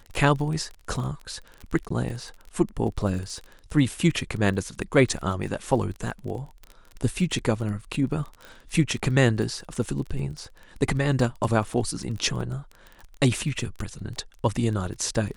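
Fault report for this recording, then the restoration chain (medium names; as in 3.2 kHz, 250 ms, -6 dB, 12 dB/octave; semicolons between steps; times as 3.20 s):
crackle 23 per s -32 dBFS
1.89–1.90 s: dropout 14 ms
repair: de-click; interpolate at 1.89 s, 14 ms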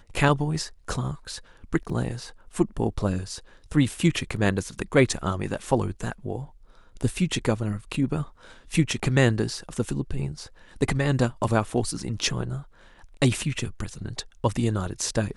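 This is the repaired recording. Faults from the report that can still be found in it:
nothing left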